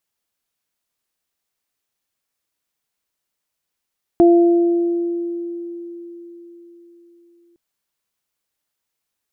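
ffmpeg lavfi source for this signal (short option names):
-f lavfi -i "aevalsrc='0.447*pow(10,-3*t/4.39)*sin(2*PI*343*t)+0.168*pow(10,-3*t/1.74)*sin(2*PI*686*t)':d=3.36:s=44100"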